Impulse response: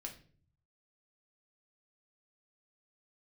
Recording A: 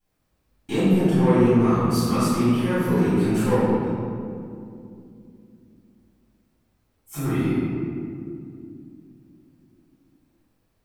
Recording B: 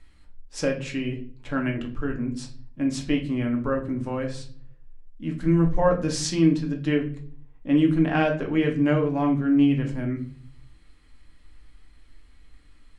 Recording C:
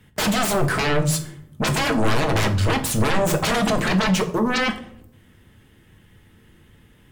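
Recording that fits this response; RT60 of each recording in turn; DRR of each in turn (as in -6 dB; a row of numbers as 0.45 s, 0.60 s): B; 2.5 s, 0.45 s, 0.65 s; -17.0 dB, 1.0 dB, 5.0 dB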